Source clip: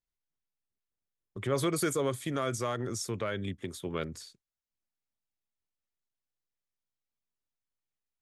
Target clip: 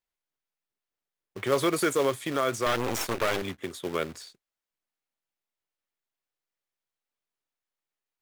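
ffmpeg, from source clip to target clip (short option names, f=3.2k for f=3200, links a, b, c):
-filter_complex "[0:a]acrusher=bits=3:mode=log:mix=0:aa=0.000001,asettb=1/sr,asplit=3[a][b][c];[a]atrim=end=2.664[d];[b]atrim=start=2.66:end=3.42,asetpts=PTS-STARTPTS,afade=t=in:d=0.004:c=qsin,afade=t=out:st=0.756:d=0.004:c=qsin,aeval=exprs='0.0944*(cos(1*acos(clip(val(0)/0.0944,-1,1)))-cos(1*PI/2))+0.0266*(cos(8*acos(clip(val(0)/0.0944,-1,1)))-cos(8*PI/2))':c=same[e];[c]atrim=start=3.416[f];[d][e]acrossfade=d=0.004:c1=hsin:c2=qsin[g];[g][f]acrossfade=d=0.004:c1=qsin:c2=hsin,bass=f=250:g=-11,treble=f=4k:g=-6,volume=6.5dB"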